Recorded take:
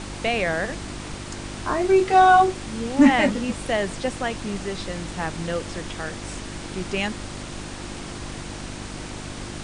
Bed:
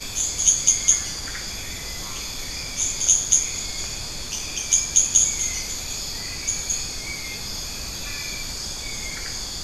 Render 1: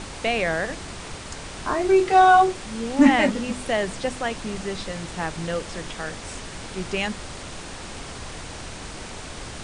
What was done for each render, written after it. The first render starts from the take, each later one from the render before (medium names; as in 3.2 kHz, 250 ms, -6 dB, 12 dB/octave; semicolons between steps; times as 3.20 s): de-hum 50 Hz, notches 7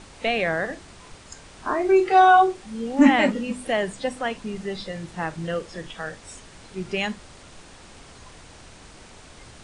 noise print and reduce 10 dB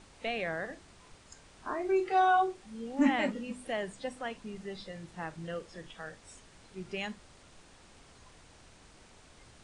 trim -11 dB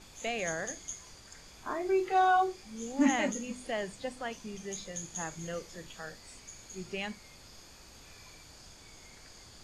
add bed -24.5 dB